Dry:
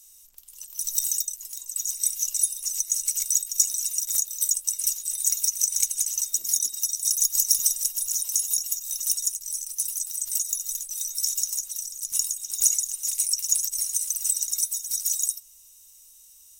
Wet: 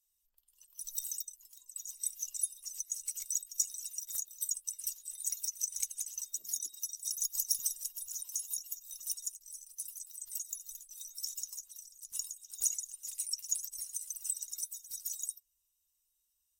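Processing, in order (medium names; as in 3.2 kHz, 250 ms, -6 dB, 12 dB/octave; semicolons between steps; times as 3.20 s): expander on every frequency bin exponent 1.5; trim -9 dB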